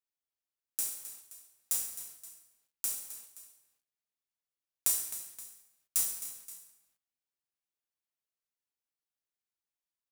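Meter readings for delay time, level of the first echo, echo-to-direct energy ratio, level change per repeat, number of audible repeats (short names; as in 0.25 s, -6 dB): 0.262 s, -13.0 dB, -12.0 dB, -5.5 dB, 2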